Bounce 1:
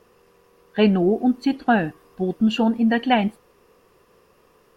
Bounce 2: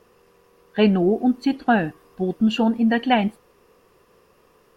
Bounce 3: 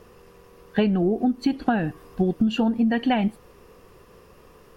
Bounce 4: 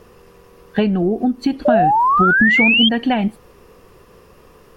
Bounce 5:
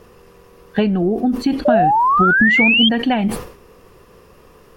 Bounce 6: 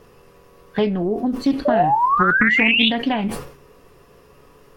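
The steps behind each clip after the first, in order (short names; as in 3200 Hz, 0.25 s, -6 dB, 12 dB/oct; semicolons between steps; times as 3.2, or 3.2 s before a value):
nothing audible
low shelf 150 Hz +10 dB; compressor 16:1, threshold -22 dBFS, peak gain reduction 13.5 dB; gain +4.5 dB
painted sound rise, 1.65–2.89, 570–3300 Hz -18 dBFS; gain +4 dB
sustainer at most 100 dB/s
resonator 140 Hz, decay 0.21 s, harmonics all, mix 70%; Doppler distortion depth 0.22 ms; gain +3.5 dB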